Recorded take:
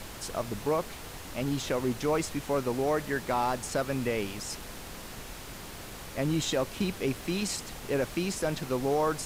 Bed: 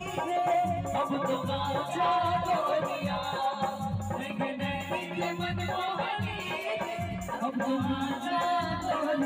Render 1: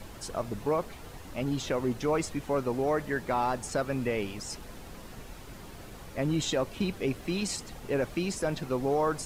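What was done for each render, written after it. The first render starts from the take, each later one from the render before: denoiser 8 dB, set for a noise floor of -43 dBFS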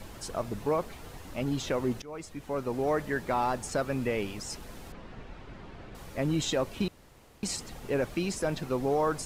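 2.02–2.9 fade in, from -20.5 dB; 4.92–5.95 LPF 3000 Hz; 6.88–7.43 room tone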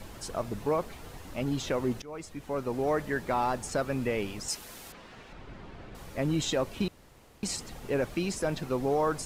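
4.48–5.33 tilt +2.5 dB/oct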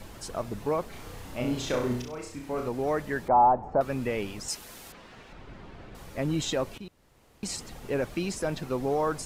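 0.9–2.69 flutter echo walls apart 5.6 m, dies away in 0.53 s; 3.28–3.81 synth low-pass 820 Hz, resonance Q 3.8; 6.78–7.6 fade in, from -15 dB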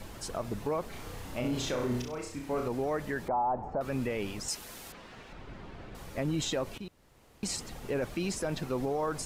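limiter -23.5 dBFS, peak gain reduction 11 dB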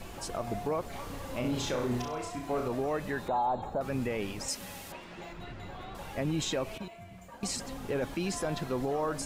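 add bed -15 dB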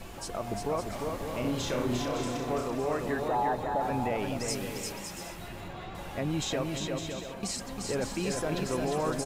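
bouncing-ball echo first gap 0.35 s, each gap 0.6×, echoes 5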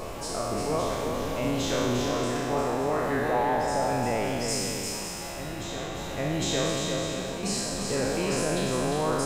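spectral trails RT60 1.92 s; reverse echo 0.805 s -9.5 dB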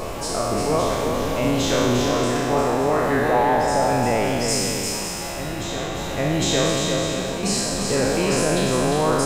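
gain +7 dB

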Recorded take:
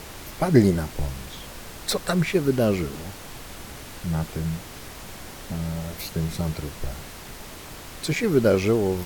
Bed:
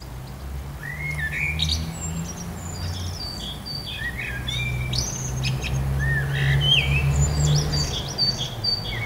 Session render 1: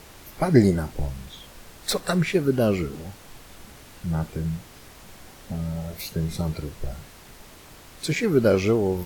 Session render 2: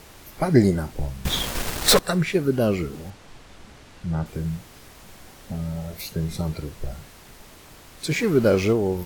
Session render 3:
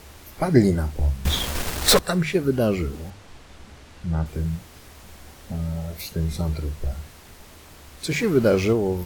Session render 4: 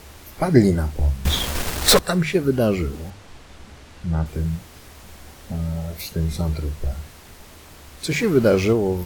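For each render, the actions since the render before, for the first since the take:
noise print and reduce 7 dB
1.25–1.99 sample leveller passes 5; 3.1–4.26 air absorption 56 m; 8.11–8.73 zero-crossing step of -32.5 dBFS
bell 73 Hz +12 dB 0.32 oct; notches 50/100/150 Hz
gain +2 dB

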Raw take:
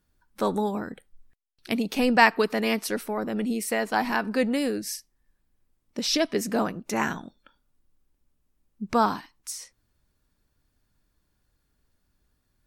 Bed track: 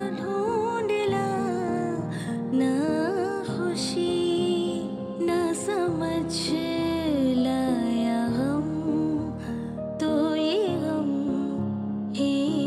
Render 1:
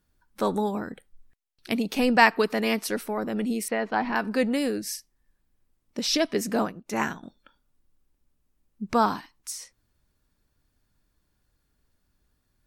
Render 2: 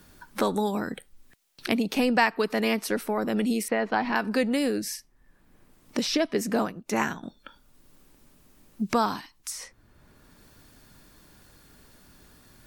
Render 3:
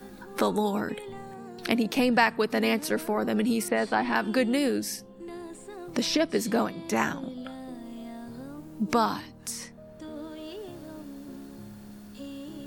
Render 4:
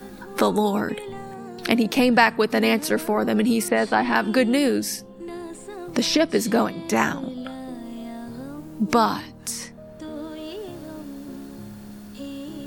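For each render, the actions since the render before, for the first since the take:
3.68–4.16 air absorption 250 m; 6.65–7.23 upward expander, over -43 dBFS
three-band squash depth 70%
add bed track -16 dB
gain +5.5 dB

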